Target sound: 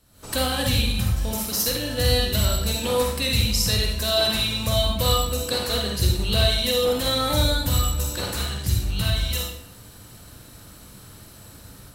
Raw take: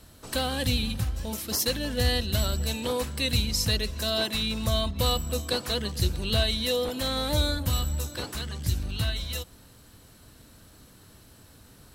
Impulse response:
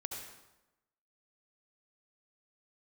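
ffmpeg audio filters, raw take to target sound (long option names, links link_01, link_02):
-filter_complex "[0:a]highshelf=frequency=7100:gain=4.5,dynaudnorm=framelen=120:gausssize=3:maxgain=15dB[link_01];[1:a]atrim=start_sample=2205,asetrate=70560,aresample=44100[link_02];[link_01][link_02]afir=irnorm=-1:irlink=0,volume=-3.5dB"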